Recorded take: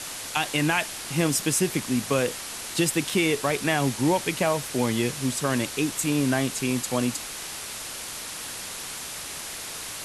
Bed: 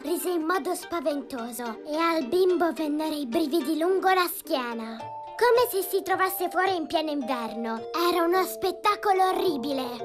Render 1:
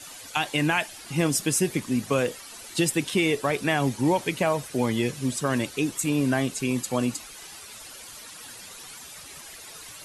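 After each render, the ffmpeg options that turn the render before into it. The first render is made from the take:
-af "afftdn=nr=12:nf=-36"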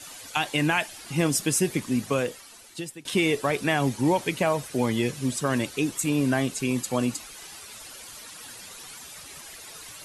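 -filter_complex "[0:a]asplit=2[s0][s1];[s0]atrim=end=3.05,asetpts=PTS-STARTPTS,afade=t=out:st=1.98:d=1.07:silence=0.0707946[s2];[s1]atrim=start=3.05,asetpts=PTS-STARTPTS,afade=t=in:d=0.004:c=hsin:silence=0.0707946[s3];[s2][s3]concat=n=2:v=0:a=1"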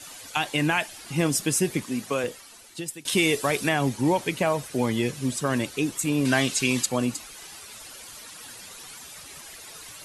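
-filter_complex "[0:a]asettb=1/sr,asplit=3[s0][s1][s2];[s0]atrim=end=1.844[s3];[s1]atrim=start=1.84:end=2.24,asetpts=PTS-STARTPTS,afade=t=in:d=0.004:c=qsin,afade=t=out:st=0.396:d=0.004:c=qsin,highpass=f=290:p=1[s4];[s2]atrim=start=2.236[s5];[s3][s4]acrossfade=d=0.004:c1=hsin:c2=qsin[s6];[s6][s5]acrossfade=d=0.004:c1=qsin:c2=hsin,asettb=1/sr,asplit=3[s7][s8][s9];[s7]atrim=end=2.884[s10];[s8]atrim=start=2.88:end=3.69,asetpts=PTS-STARTPTS,afade=t=in:d=0.004:c=qsin,afade=t=out:st=0.806:d=0.004:c=qsin,highshelf=f=3500:g=8.5[s11];[s9]atrim=start=3.686[s12];[s10][s11]acrossfade=d=0.004:c1=hsin:c2=qsin[s13];[s13][s12]acrossfade=d=0.004:c1=qsin:c2=hsin,asettb=1/sr,asplit=3[s14][s15][s16];[s14]atrim=end=6.254[s17];[s15]atrim=start=6.25:end=6.86,asetpts=PTS-STARTPTS,afade=t=in:d=0.004:c=qsin,afade=t=out:st=0.606:d=0.004:c=qsin,equalizer=f=4000:w=0.4:g=10[s18];[s16]atrim=start=6.856[s19];[s17][s18]acrossfade=d=0.004:c1=hsin:c2=qsin[s20];[s20][s19]acrossfade=d=0.004:c1=qsin:c2=hsin"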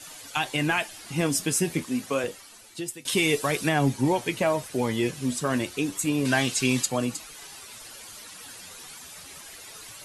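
-filter_complex "[0:a]flanger=delay=6:depth=6.4:regen=61:speed=0.28:shape=triangular,asplit=2[s0][s1];[s1]volume=8.91,asoftclip=hard,volume=0.112,volume=0.501[s2];[s0][s2]amix=inputs=2:normalize=0"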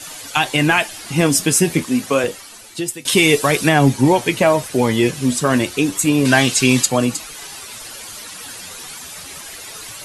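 -af "volume=3.16,alimiter=limit=0.794:level=0:latency=1"

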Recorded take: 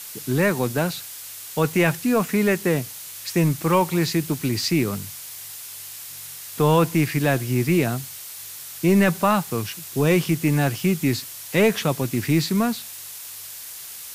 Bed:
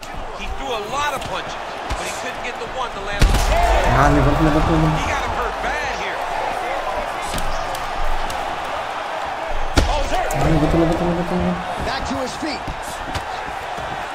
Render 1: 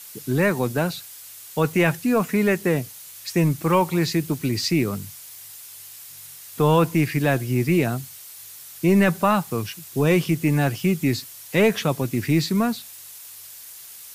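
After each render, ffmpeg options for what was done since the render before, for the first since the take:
-af "afftdn=nr=6:nf=-38"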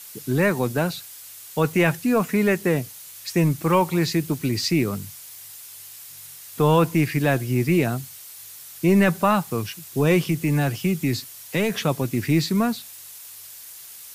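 -filter_complex "[0:a]asettb=1/sr,asplit=3[s0][s1][s2];[s0]atrim=end=10.244[s3];[s1]atrim=start=10.24:end=11.76,asetpts=PTS-STARTPTS,afade=t=in:d=0.004:c=qsin,afade=t=out:st=1.516:d=0.004:c=qsin,acrossover=split=170|3000[s4][s5][s6];[s5]acompressor=threshold=0.1:ratio=6:attack=3.2:release=140:knee=2.83:detection=peak[s7];[s4][s7][s6]amix=inputs=3:normalize=0[s8];[s2]atrim=start=11.756[s9];[s3][s8]acrossfade=d=0.004:c1=hsin:c2=qsin[s10];[s10][s9]acrossfade=d=0.004:c1=qsin:c2=hsin"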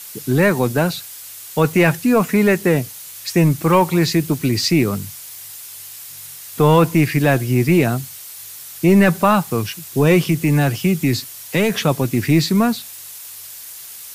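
-af "acontrast=49"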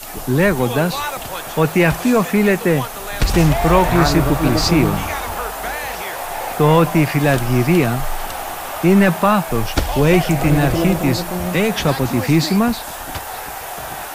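-filter_complex "[1:a]volume=0.708[s0];[0:a][s0]amix=inputs=2:normalize=0"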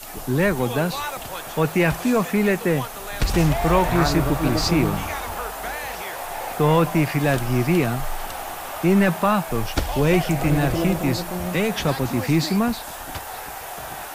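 -af "volume=0.562"

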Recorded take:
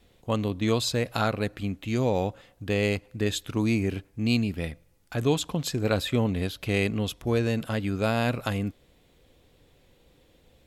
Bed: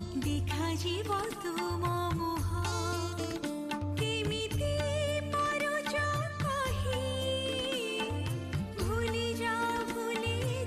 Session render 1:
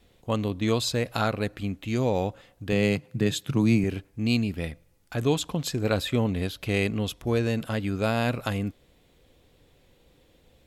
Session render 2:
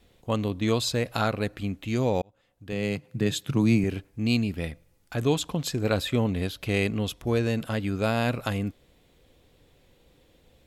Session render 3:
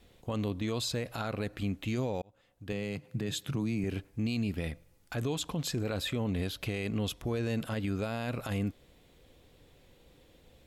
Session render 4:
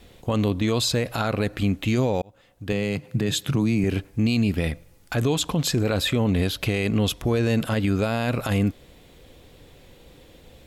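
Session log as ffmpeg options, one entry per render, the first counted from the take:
-filter_complex "[0:a]asettb=1/sr,asplit=3[s0][s1][s2];[s0]atrim=end=2.724[s3];[s1]atrim=start=2.72:end=3.84,asetpts=PTS-STARTPTS,afade=t=in:d=0.004:c=qsin,afade=t=out:st=1.116:d=0.004:c=qsin,highpass=f=140:t=q:w=4.9[s4];[s2]atrim=start=3.836[s5];[s3][s4]acrossfade=d=0.004:c1=hsin:c2=qsin[s6];[s6][s5]acrossfade=d=0.004:c1=qsin:c2=hsin"
-filter_complex "[0:a]asplit=2[s0][s1];[s0]atrim=end=2.22,asetpts=PTS-STARTPTS,afade=t=out:st=2.216:d=0.004:c=hsin[s2];[s1]atrim=start=2.22,asetpts=PTS-STARTPTS,afade=t=in:d=1.15[s3];[s2][s3]concat=n=2:v=0:a=1"
-af "acompressor=threshold=0.0398:ratio=2.5,alimiter=level_in=1.06:limit=0.0631:level=0:latency=1:release=23,volume=0.944"
-af "volume=3.35"

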